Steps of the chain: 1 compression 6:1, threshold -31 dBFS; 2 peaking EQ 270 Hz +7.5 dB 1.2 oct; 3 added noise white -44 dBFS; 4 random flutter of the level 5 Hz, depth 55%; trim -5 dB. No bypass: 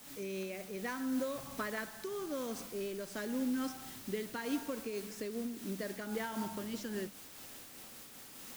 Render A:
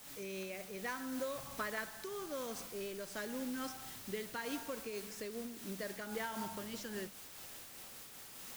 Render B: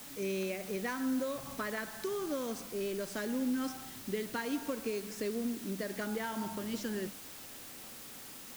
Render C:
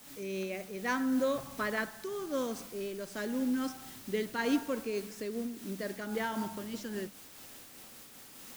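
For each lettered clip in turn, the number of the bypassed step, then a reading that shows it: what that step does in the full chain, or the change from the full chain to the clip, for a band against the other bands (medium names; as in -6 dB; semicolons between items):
2, 250 Hz band -6.5 dB; 4, loudness change +2.5 LU; 1, mean gain reduction 2.5 dB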